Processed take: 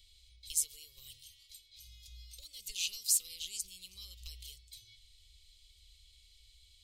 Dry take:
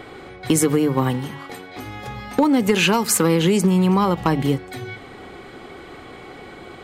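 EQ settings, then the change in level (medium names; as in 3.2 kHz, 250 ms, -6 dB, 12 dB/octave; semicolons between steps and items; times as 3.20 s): inverse Chebyshev band-stop 140–1700 Hz, stop band 50 dB; tone controls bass -3 dB, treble -6 dB; peaking EQ 560 Hz +2 dB; -3.0 dB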